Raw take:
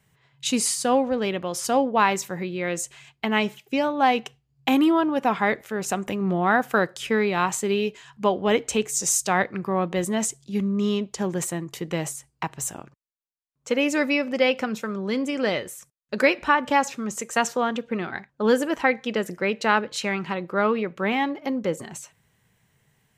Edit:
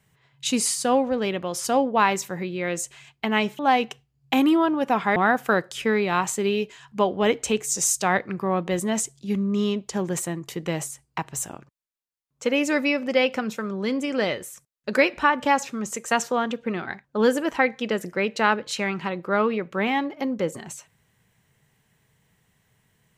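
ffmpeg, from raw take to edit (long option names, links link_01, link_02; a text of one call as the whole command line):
ffmpeg -i in.wav -filter_complex "[0:a]asplit=3[link_01][link_02][link_03];[link_01]atrim=end=3.592[link_04];[link_02]atrim=start=3.938:end=5.512[link_05];[link_03]atrim=start=6.408[link_06];[link_04][link_05]acrossfade=duration=0.004:curve1=hsin:curve2=hsin[link_07];[link_07][link_06]acrossfade=duration=0.004:curve1=hsin:curve2=hsin" out.wav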